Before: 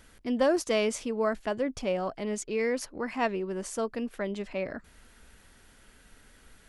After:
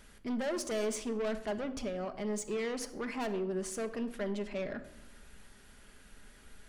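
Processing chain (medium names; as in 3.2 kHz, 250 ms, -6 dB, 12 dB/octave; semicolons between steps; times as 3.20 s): 1.84–2.25 s: compression, threshold -31 dBFS, peak gain reduction 6.5 dB; saturation -31 dBFS, distortion -7 dB; simulated room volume 3000 m³, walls furnished, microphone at 1.3 m; trim -1.5 dB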